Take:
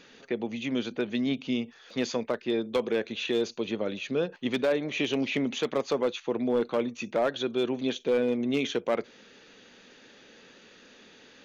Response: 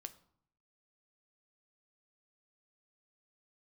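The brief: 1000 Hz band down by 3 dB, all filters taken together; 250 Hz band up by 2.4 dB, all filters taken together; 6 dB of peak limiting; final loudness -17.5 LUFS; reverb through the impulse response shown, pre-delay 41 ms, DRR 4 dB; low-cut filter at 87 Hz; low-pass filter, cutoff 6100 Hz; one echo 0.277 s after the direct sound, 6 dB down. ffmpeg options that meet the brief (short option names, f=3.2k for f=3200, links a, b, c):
-filter_complex "[0:a]highpass=87,lowpass=6.1k,equalizer=f=250:t=o:g=3,equalizer=f=1k:t=o:g=-4.5,alimiter=limit=-22.5dB:level=0:latency=1,aecho=1:1:277:0.501,asplit=2[a][b];[1:a]atrim=start_sample=2205,adelay=41[c];[b][c]afir=irnorm=-1:irlink=0,volume=1dB[d];[a][d]amix=inputs=2:normalize=0,volume=12dB"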